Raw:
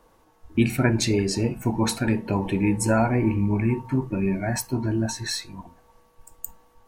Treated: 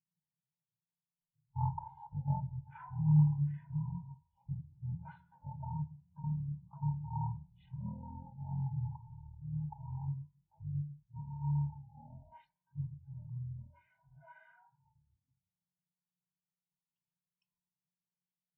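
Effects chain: double band-pass 1000 Hz, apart 2.6 oct; wide varispeed 0.37×; spectral expander 1.5:1

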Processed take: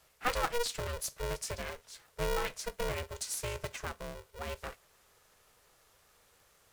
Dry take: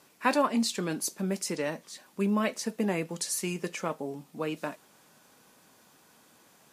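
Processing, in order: Chebyshev band-stop 390–880 Hz, order 2; polarity switched at an audio rate 240 Hz; gain -4.5 dB

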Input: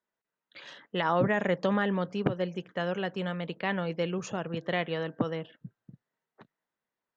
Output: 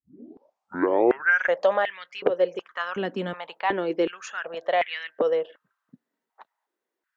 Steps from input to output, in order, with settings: tape start at the beginning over 1.56 s; stepped high-pass 2.7 Hz 260–2100 Hz; gain +1.5 dB

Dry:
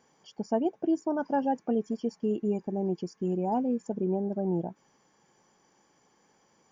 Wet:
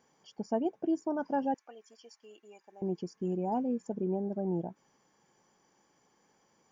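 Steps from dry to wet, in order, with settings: 1.54–2.82 HPF 1300 Hz 12 dB/oct; gain -3.5 dB

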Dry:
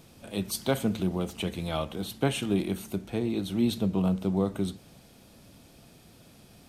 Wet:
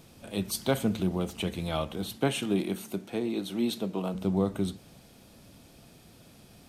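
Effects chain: 2.16–4.14 HPF 130 Hz -> 310 Hz 12 dB/oct

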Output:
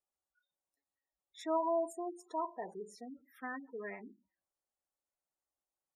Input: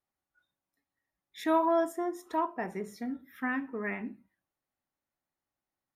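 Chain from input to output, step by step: ten-band EQ 125 Hz -9 dB, 250 Hz -6 dB, 500 Hz +4 dB, 2000 Hz -4 dB, 8000 Hz +7 dB; spectral gate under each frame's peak -15 dB strong; gain -6.5 dB

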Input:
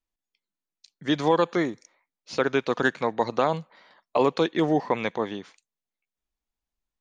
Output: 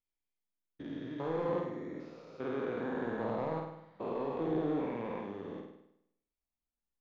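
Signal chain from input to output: stepped spectrum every 0.4 s; LPF 1000 Hz 6 dB/oct; soft clip -21.5 dBFS, distortion -18 dB; on a send: flutter echo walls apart 8.7 m, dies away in 0.77 s; on the sum: gain -6 dB

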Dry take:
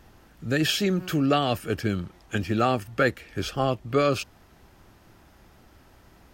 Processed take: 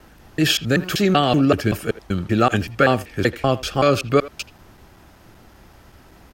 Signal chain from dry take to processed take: slices in reverse order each 0.191 s, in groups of 2; speakerphone echo 80 ms, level -17 dB; gain +6.5 dB

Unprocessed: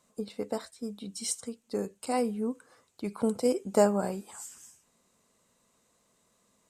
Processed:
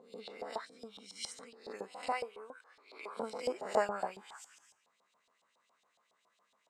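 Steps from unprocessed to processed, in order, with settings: spectral swells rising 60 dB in 0.57 s; 2.12–3.17 HPF 350 Hz 24 dB/oct; LFO band-pass saw up 7.2 Hz 720–3900 Hz; gain +3 dB

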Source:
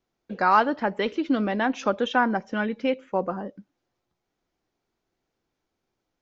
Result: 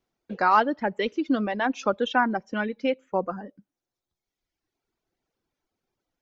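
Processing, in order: reverb removal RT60 1.4 s

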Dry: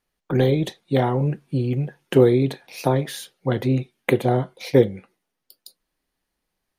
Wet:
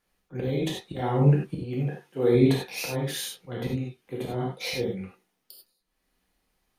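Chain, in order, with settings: 1.47–2.35 HPF 210 Hz 6 dB/oct; auto swell 0.412 s; non-linear reverb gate 0.12 s flat, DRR -3 dB

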